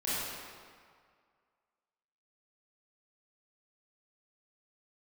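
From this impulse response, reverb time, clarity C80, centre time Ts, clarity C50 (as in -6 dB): 2.0 s, -2.0 dB, 0.148 s, -5.0 dB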